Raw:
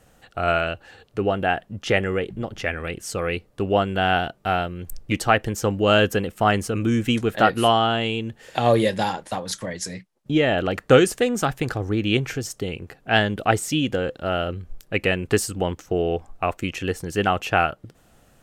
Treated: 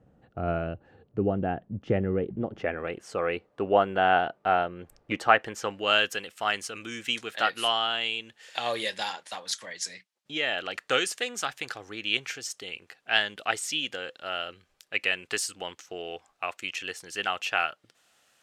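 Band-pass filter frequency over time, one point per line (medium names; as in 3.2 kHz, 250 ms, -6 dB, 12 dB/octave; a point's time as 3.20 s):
band-pass filter, Q 0.64
2.11 s 180 Hz
3.00 s 840 Hz
5.01 s 840 Hz
6.13 s 3.9 kHz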